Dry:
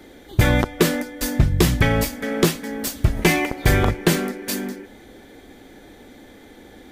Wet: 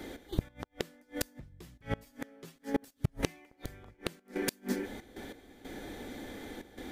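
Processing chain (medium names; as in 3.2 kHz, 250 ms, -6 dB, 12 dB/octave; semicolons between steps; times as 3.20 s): 2.06–3.25 s: comb 7.4 ms, depth 94%; trance gate "x.x..xxxxxx.xxx" 93 bpm -12 dB; inverted gate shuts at -17 dBFS, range -36 dB; trim +1 dB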